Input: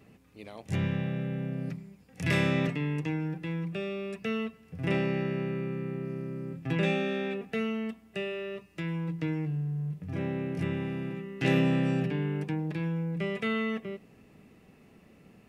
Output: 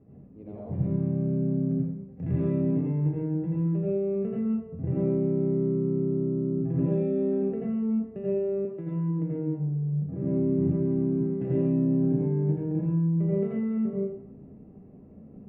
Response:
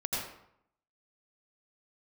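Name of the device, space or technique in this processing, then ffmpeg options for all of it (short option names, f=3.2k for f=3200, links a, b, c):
television next door: -filter_complex "[0:a]acompressor=threshold=-31dB:ratio=5,lowpass=470[a];[1:a]atrim=start_sample=2205[b];[a][b]afir=irnorm=-1:irlink=0,asettb=1/sr,asplit=3[c][d][e];[c]atrim=end=8.654[f];[d]atrim=start=8.65:end=10.24,asetpts=PTS-STARTPTS,afade=t=in:d=0.004:c=qsin,afade=t=out:st=1.586:d=0.004:c=qsin,highpass=160[g];[e]atrim=start=10.236[h];[f][g]acrossfade=d=0.004:c1=hsin:c2=qsin[i];[i][h]acrossfade=d=0.004:c1=qsin:c2=hsin,volume=2.5dB"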